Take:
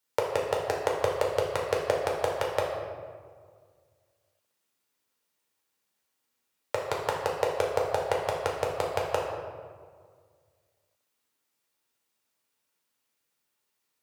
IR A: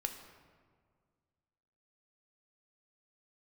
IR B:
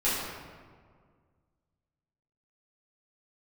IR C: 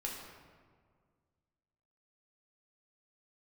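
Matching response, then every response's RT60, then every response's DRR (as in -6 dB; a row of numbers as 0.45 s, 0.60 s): C; 1.9 s, 1.8 s, 1.9 s; 5.0 dB, -11.5 dB, -2.5 dB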